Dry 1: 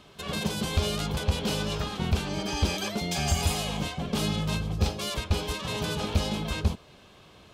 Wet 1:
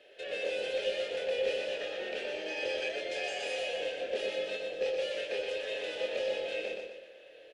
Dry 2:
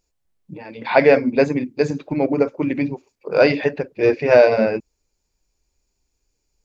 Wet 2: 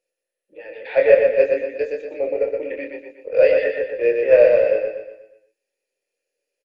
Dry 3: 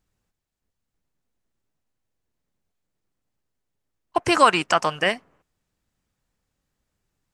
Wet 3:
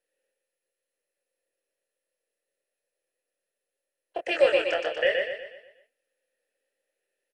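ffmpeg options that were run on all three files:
-filter_complex "[0:a]highpass=f=320:w=0.5412,highpass=f=320:w=1.3066,highshelf=f=5.1k:g=3,asplit=2[a][b];[b]acompressor=threshold=-34dB:ratio=5,volume=-1dB[c];[a][c]amix=inputs=2:normalize=0,asplit=3[d][e][f];[d]bandpass=f=530:t=q:w=8,volume=0dB[g];[e]bandpass=f=1.84k:t=q:w=8,volume=-6dB[h];[f]bandpass=f=2.48k:t=q:w=8,volume=-9dB[i];[g][h][i]amix=inputs=3:normalize=0,asplit=2[j][k];[k]adelay=25,volume=-4.5dB[l];[j][l]amix=inputs=2:normalize=0,asplit=2[m][n];[n]aecho=0:1:121|242|363|484|605|726:0.631|0.284|0.128|0.0575|0.0259|0.0116[o];[m][o]amix=inputs=2:normalize=0,volume=2.5dB" -ar 44100 -c:a mp2 -b:a 64k

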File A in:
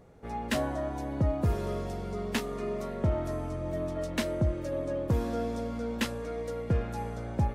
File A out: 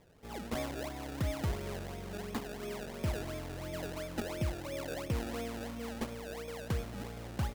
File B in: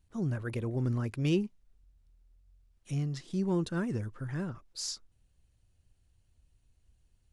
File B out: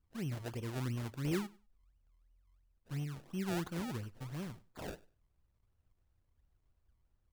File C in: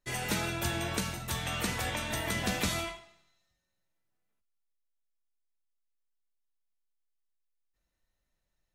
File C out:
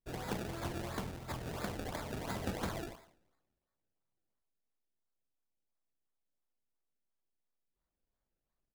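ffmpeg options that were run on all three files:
-af "acrusher=samples=29:mix=1:aa=0.000001:lfo=1:lforange=29:lforate=2.9,aecho=1:1:98|196:0.0794|0.0143,volume=-7dB"

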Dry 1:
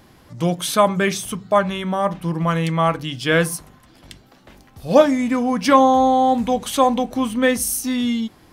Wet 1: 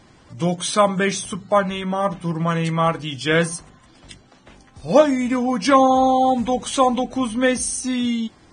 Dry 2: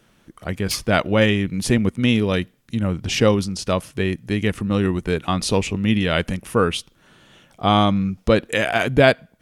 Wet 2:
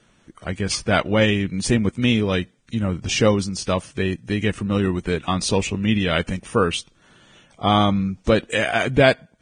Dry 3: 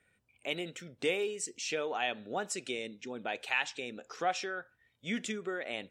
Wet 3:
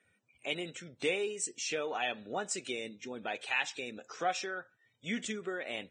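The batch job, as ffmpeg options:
-af "volume=-1dB" -ar 22050 -c:a libvorbis -b:a 16k

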